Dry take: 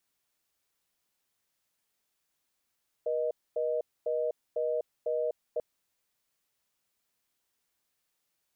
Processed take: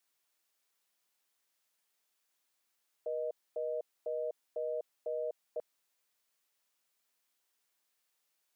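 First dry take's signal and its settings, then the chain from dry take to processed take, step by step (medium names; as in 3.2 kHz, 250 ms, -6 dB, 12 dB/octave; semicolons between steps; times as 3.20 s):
call progress tone reorder tone, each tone -30 dBFS 2.54 s
high-pass 450 Hz 6 dB/octave; peak limiter -30 dBFS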